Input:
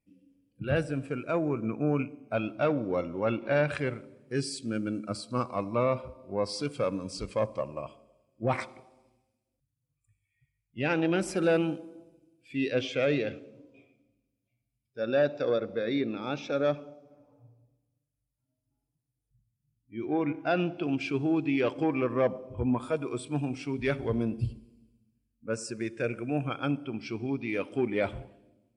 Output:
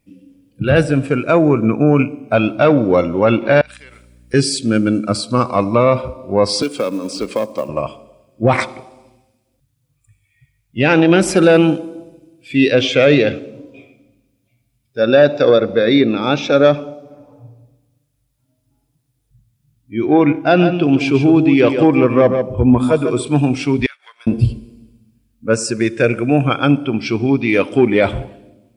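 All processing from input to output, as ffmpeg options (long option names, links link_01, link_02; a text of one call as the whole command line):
ffmpeg -i in.wav -filter_complex "[0:a]asettb=1/sr,asplit=3[link_01][link_02][link_03];[link_01]atrim=end=3.614[link_04];[link_02]atrim=start=3.61:end=4.34,asetpts=PTS-STARTPTS,afade=type=in:duration=0.004:curve=qsin,afade=type=out:start_time=0.726:duration=0.004:curve=qsin,aderivative,acompressor=threshold=-52dB:ratio=10:attack=3.2:release=140:knee=1:detection=peak,aeval=exprs='val(0)+0.000708*(sin(2*PI*60*n/s)+sin(2*PI*2*60*n/s)/2+sin(2*PI*3*60*n/s)/3+sin(2*PI*4*60*n/s)/4+sin(2*PI*5*60*n/s)/5)':channel_layout=same[link_05];[link_03]atrim=start=4.336[link_06];[link_04][link_05]acrossfade=duration=0.004:curve1=hsin:curve2=qsin[link_07];[link_07][link_06]acrossfade=duration=0.004:curve1=qsin:curve2=hsin,asettb=1/sr,asplit=3[link_08][link_09][link_10];[link_08]atrim=end=6.624[link_11];[link_09]atrim=start=6.62:end=7.69,asetpts=PTS-STARTPTS,afade=type=in:duration=0.004:curve=qsin,afade=type=out:start_time=1.066:duration=0.004:curve=qsin,lowshelf=frequency=170:width_type=q:width=1.5:gain=-14,acrossover=split=250|3500[link_12][link_13][link_14];[link_12]acompressor=threshold=-45dB:ratio=4[link_15];[link_13]acompressor=threshold=-36dB:ratio=4[link_16];[link_14]acompressor=threshold=-49dB:ratio=4[link_17];[link_15][link_16][link_17]amix=inputs=3:normalize=0,acrusher=bits=7:mode=log:mix=0:aa=0.000001[link_18];[link_10]atrim=start=7.686[link_19];[link_11][link_18]acrossfade=duration=0.004:curve1=hsin:curve2=qsin[link_20];[link_20][link_19]acrossfade=duration=0.004:curve1=qsin:curve2=hsin,asettb=1/sr,asplit=3[link_21][link_22][link_23];[link_21]atrim=end=20.384[link_24];[link_22]atrim=start=20.38:end=23.27,asetpts=PTS-STARTPTS,afade=type=in:duration=0.004:curve=qsin,afade=type=out:start_time=2.886:duration=0.004:curve=qsin,equalizer=frequency=2000:width=0.31:gain=-4,aecho=1:1:145:0.376,atrim=end_sample=127449[link_25];[link_23]atrim=start=23.266[link_26];[link_24][link_25]acrossfade=duration=0.004:curve1=hsin:curve2=qsin[link_27];[link_27][link_26]acrossfade=duration=0.004:curve1=qsin:curve2=hsin,asettb=1/sr,asplit=3[link_28][link_29][link_30];[link_28]atrim=end=23.864[link_31];[link_29]atrim=start=23.86:end=24.27,asetpts=PTS-STARTPTS,afade=type=in:duration=0.004:curve=qsin,afade=type=out:start_time=0.406:duration=0.004:curve=qsin,highpass=frequency=1300:width=0.5412,highpass=frequency=1300:width=1.3066,acompressor=threshold=-52dB:ratio=4:attack=3.2:release=140:knee=1:detection=peak,agate=range=-33dB:threshold=-53dB:ratio=3:release=100:detection=peak[link_32];[link_30]atrim=start=24.266[link_33];[link_31][link_32]acrossfade=duration=0.004:curve1=hsin:curve2=qsin[link_34];[link_34][link_33]acrossfade=duration=0.004:curve1=qsin:curve2=hsin,equalizer=frequency=3600:width=5.7:gain=3,alimiter=level_in=18dB:limit=-1dB:release=50:level=0:latency=1,volume=-1dB" out.wav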